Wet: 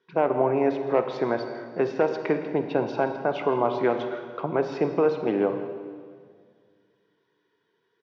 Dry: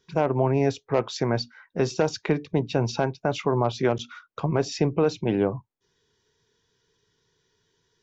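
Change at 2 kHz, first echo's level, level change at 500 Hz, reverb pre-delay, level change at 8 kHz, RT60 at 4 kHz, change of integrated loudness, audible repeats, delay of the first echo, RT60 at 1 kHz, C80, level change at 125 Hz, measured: +0.5 dB, -17.0 dB, +1.5 dB, 39 ms, no reading, 1.7 s, 0.0 dB, 1, 163 ms, 1.8 s, 8.5 dB, -10.5 dB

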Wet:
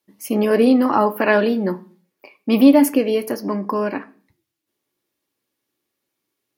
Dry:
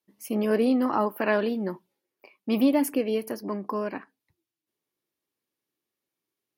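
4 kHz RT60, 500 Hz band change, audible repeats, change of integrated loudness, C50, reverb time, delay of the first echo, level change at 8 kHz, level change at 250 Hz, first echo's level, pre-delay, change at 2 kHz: 0.45 s, +8.5 dB, no echo, +9.0 dB, 19.5 dB, 0.45 s, no echo, +8.0 dB, +9.0 dB, no echo, 3 ms, +9.0 dB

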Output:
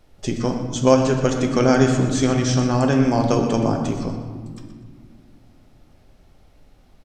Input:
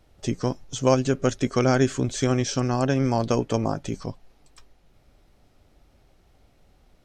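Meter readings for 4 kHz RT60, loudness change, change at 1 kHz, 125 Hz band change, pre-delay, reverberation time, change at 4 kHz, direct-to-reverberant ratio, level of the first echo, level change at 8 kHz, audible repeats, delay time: 1.0 s, +5.0 dB, +4.5 dB, +4.5 dB, 4 ms, 1.9 s, +4.0 dB, 2.5 dB, -11.5 dB, +3.5 dB, 2, 122 ms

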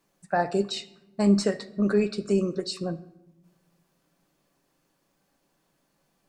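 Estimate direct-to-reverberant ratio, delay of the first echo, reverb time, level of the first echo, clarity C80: 10.0 dB, no echo, 0.95 s, no echo, 19.5 dB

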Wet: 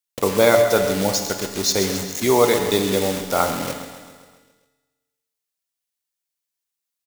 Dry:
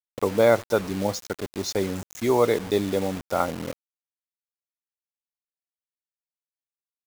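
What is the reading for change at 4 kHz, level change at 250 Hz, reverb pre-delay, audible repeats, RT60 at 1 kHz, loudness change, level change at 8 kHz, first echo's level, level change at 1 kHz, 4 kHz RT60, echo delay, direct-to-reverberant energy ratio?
+11.0 dB, +4.0 dB, 7 ms, 5, 1.6 s, +5.5 dB, +13.0 dB, -12.0 dB, +5.5 dB, 1.7 s, 133 ms, 4.5 dB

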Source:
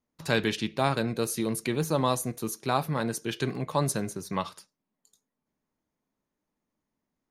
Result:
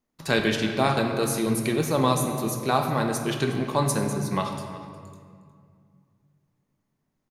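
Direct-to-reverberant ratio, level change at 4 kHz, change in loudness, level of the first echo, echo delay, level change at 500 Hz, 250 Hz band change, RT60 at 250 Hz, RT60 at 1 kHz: 3.0 dB, +3.5 dB, +4.5 dB, -17.5 dB, 360 ms, +4.5 dB, +5.0 dB, 2.8 s, 2.1 s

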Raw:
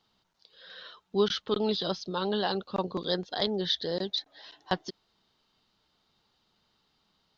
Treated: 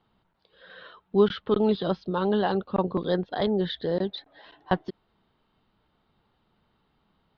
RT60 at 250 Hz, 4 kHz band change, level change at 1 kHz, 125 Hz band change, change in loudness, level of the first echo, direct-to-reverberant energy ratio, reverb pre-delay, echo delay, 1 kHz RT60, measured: no reverb, -6.0 dB, +4.0 dB, +7.0 dB, +4.0 dB, no echo, no reverb, no reverb, no echo, no reverb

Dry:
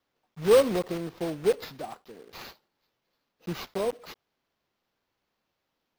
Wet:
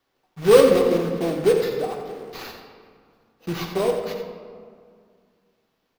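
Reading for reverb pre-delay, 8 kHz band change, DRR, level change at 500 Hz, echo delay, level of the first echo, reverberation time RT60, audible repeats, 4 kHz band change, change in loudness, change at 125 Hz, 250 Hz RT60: 3 ms, +6.0 dB, 1.5 dB, +8.0 dB, 88 ms, -10.5 dB, 2.1 s, 1, +6.5 dB, +7.0 dB, +7.5 dB, 2.5 s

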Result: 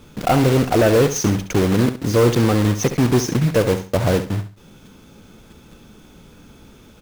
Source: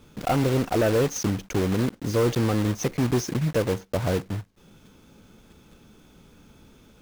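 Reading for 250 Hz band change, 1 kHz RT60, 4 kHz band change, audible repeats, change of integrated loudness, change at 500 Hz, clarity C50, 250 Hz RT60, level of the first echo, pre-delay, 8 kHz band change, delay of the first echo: +7.0 dB, no reverb, +7.5 dB, 3, +7.0 dB, +7.5 dB, no reverb, no reverb, -11.0 dB, no reverb, +7.5 dB, 68 ms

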